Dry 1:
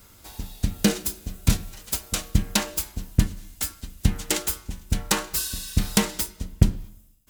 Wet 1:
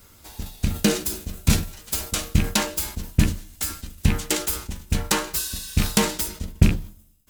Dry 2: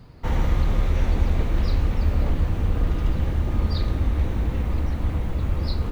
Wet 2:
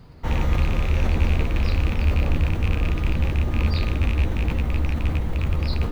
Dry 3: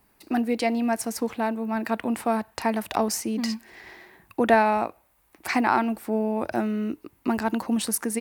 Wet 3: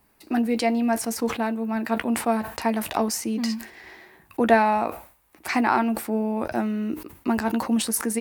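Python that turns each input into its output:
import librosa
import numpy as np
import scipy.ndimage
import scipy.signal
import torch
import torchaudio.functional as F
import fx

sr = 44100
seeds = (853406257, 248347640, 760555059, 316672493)

y = fx.rattle_buzz(x, sr, strikes_db=-19.0, level_db=-20.0)
y = fx.doubler(y, sr, ms=13.0, db=-10.5)
y = fx.sustainer(y, sr, db_per_s=120.0)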